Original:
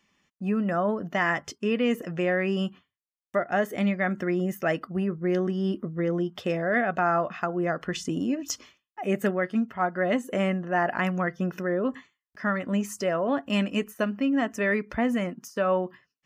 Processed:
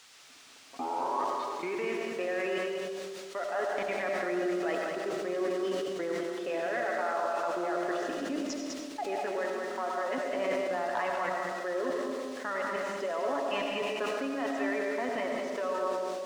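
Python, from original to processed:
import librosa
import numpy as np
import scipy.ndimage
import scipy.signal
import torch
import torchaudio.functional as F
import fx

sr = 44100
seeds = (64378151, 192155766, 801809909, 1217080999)

y = fx.tape_start_head(x, sr, length_s=1.98)
y = scipy.signal.sosfilt(scipy.signal.butter(4, 320.0, 'highpass', fs=sr, output='sos'), y)
y = fx.peak_eq(y, sr, hz=960.0, db=6.5, octaves=0.53)
y = y + 0.4 * np.pad(y, (int(7.2 * sr / 1000.0), 0))[:len(y)]
y = fx.level_steps(y, sr, step_db=16)
y = fx.dmg_noise_colour(y, sr, seeds[0], colour='blue', level_db=-42.0)
y = fx.clip_asym(y, sr, top_db=-25.0, bottom_db=-20.5)
y = fx.air_absorb(y, sr, metres=120.0)
y = y + 10.0 ** (-6.0 / 20.0) * np.pad(y, (int(200 * sr / 1000.0), 0))[:len(y)]
y = fx.rev_freeverb(y, sr, rt60_s=1.9, hf_ratio=0.35, predelay_ms=50, drr_db=1.5)
y = fx.sustainer(y, sr, db_per_s=20.0)
y = F.gain(torch.from_numpy(y), -1.5).numpy()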